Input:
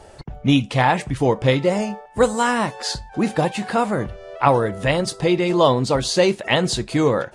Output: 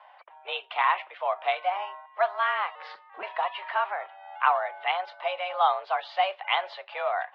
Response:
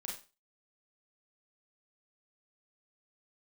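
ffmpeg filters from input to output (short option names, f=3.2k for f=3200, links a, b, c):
-filter_complex "[0:a]highpass=f=490:t=q:w=0.5412,highpass=f=490:t=q:w=1.307,lowpass=f=3.1k:t=q:w=0.5176,lowpass=f=3.1k:t=q:w=0.7071,lowpass=f=3.1k:t=q:w=1.932,afreqshift=190,asettb=1/sr,asplit=3[a][b][c];[a]atrim=end=2.754[d];[b]atrim=start=2.75:end=3.23,asetpts=PTS-STARTPTS,afade=t=in:d=0.004:c=qsin,afade=t=out:st=0.476:d=0.004:c=qsin,aeval=exprs='val(0)*sin(2*PI*170*n/s)':c=same[e];[c]atrim=start=3.226[f];[d][e]acrossfade=d=0.004:c1=hsin:c2=qsin[g];[g][f]acrossfade=d=0.004:c1=qsin:c2=hsin,volume=-5.5dB"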